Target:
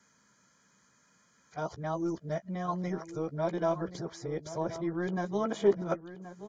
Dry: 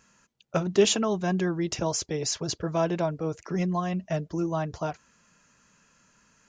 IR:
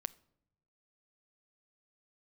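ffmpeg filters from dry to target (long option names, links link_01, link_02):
-filter_complex "[0:a]areverse,highpass=100,acrossover=split=290|760|1900[link_01][link_02][link_03][link_04];[link_01]asoftclip=type=tanh:threshold=-29.5dB[link_05];[link_04]acompressor=threshold=-47dB:ratio=6[link_06];[link_05][link_02][link_03][link_06]amix=inputs=4:normalize=0,asuperstop=centerf=2700:order=20:qfactor=6.2,asplit=2[link_07][link_08];[link_08]adelay=15,volume=-12dB[link_09];[link_07][link_09]amix=inputs=2:normalize=0,asplit=2[link_10][link_11];[link_11]adelay=1076,lowpass=frequency=2900:poles=1,volume=-13dB,asplit=2[link_12][link_13];[link_13]adelay=1076,lowpass=frequency=2900:poles=1,volume=0.31,asplit=2[link_14][link_15];[link_15]adelay=1076,lowpass=frequency=2900:poles=1,volume=0.31[link_16];[link_10][link_12][link_14][link_16]amix=inputs=4:normalize=0,volume=-4dB"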